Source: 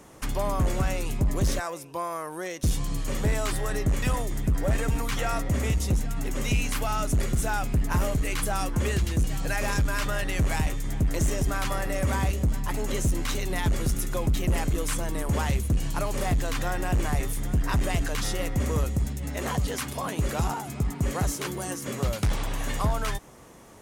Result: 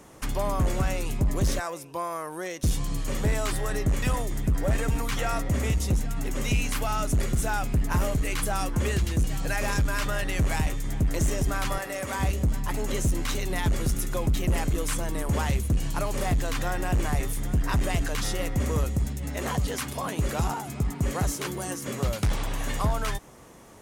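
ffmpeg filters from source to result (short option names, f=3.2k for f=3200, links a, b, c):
-filter_complex "[0:a]asettb=1/sr,asplit=3[a][b][c];[a]atrim=end=11.784[d];[b]atrim=start=11.78:end=12.2,asetpts=PTS-STARTPTS,afade=t=in:d=0.004:c=qsin,afade=t=out:st=0.416:d=0.004:c=qsin,highpass=f=460:p=1[e];[c]atrim=start=12.196[f];[d][e]acrossfade=d=0.004:c1=hsin:c2=qsin[g];[g][f]acrossfade=d=0.004:c1=qsin:c2=hsin"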